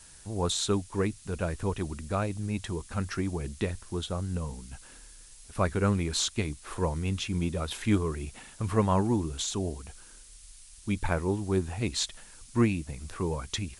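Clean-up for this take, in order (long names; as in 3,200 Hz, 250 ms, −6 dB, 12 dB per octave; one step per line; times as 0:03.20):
noise reduction from a noise print 24 dB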